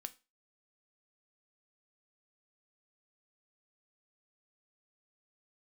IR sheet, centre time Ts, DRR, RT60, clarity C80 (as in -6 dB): 4 ms, 10.0 dB, 0.30 s, 26.0 dB